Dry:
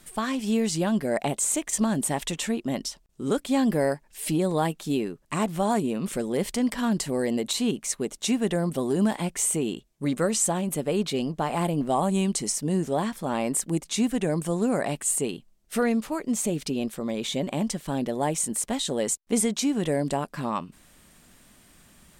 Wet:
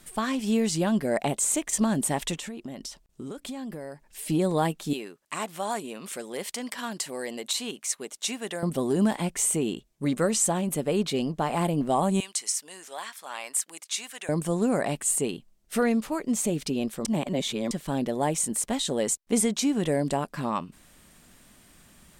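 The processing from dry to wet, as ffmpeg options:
-filter_complex "[0:a]asettb=1/sr,asplit=3[a][b][c];[a]atrim=end=2.364[d];[b]atrim=start=2.36:end=4.3,asetpts=PTS-STARTPTS,afade=t=in:d=0.004:c=qsin,afade=t=out:st=1.936:d=0.004:c=qsin,acompressor=threshold=-33dB:ratio=10:attack=3.2:release=140:knee=1:detection=peak[e];[c]atrim=start=4.296[f];[d][e]acrossfade=d=0.004:c1=hsin:c2=qsin[g];[g][f]acrossfade=d=0.004:c1=qsin:c2=hsin,asettb=1/sr,asplit=3[h][i][j];[h]atrim=end=4.934[k];[i]atrim=start=4.93:end=8.63,asetpts=PTS-STARTPTS,afade=t=in:d=0.004:c=qsin,afade=t=out:st=3.696:d=0.004:c=qsin,highpass=f=1k:p=1[l];[j]atrim=start=8.626[m];[k][l]acrossfade=d=0.004:c1=hsin:c2=qsin[n];[n][m]acrossfade=d=0.004:c1=qsin:c2=hsin,asettb=1/sr,asplit=3[o][p][q];[o]atrim=end=12.204[r];[p]atrim=start=12.2:end=14.29,asetpts=PTS-STARTPTS,afade=t=in:d=0.004:c=qsin,afade=t=out:st=2.086:d=0.004:c=qsin,highpass=1.3k[s];[q]atrim=start=14.286[t];[r][s]acrossfade=d=0.004:c1=hsin:c2=qsin[u];[u][t]acrossfade=d=0.004:c1=qsin:c2=hsin,asplit=3[v][w][x];[v]atrim=end=17.052[y];[w]atrim=start=17.048:end=17.712,asetpts=PTS-STARTPTS,areverse[z];[x]atrim=start=17.708[aa];[y][z]acrossfade=d=0.004:c1=hsin:c2=hsin[ab];[ab][aa]acrossfade=d=0.004:c1=hsin:c2=hsin"

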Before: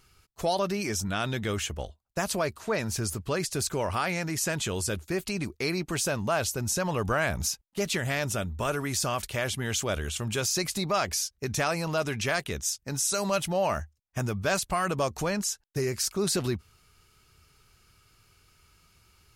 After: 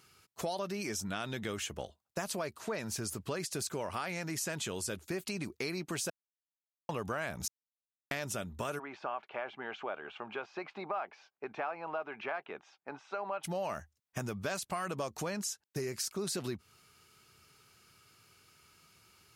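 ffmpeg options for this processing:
-filter_complex "[0:a]asplit=3[a][b][c];[a]afade=t=out:st=8.78:d=0.02[d];[b]highpass=490,equalizer=f=520:t=q:w=4:g=-4,equalizer=f=810:t=q:w=4:g=6,equalizer=f=1.9k:t=q:w=4:g=-8,lowpass=f=2.2k:w=0.5412,lowpass=f=2.2k:w=1.3066,afade=t=in:st=8.78:d=0.02,afade=t=out:st=13.43:d=0.02[e];[c]afade=t=in:st=13.43:d=0.02[f];[d][e][f]amix=inputs=3:normalize=0,asplit=5[g][h][i][j][k];[g]atrim=end=6.1,asetpts=PTS-STARTPTS,afade=t=out:st=6.096:d=0.004:c=hsin[l];[h]atrim=start=6.1:end=6.89,asetpts=PTS-STARTPTS,volume=0[m];[i]atrim=start=6.89:end=7.48,asetpts=PTS-STARTPTS,afade=t=in:d=0.004:c=hsin,afade=t=out:st=0.586:d=0.004:c=hsin[n];[j]atrim=start=7.48:end=8.11,asetpts=PTS-STARTPTS,volume=0[o];[k]atrim=start=8.11,asetpts=PTS-STARTPTS,afade=t=in:d=0.004:c=hsin[p];[l][m][n][o][p]concat=n=5:v=0:a=1,highpass=140,acompressor=threshold=-36dB:ratio=3"

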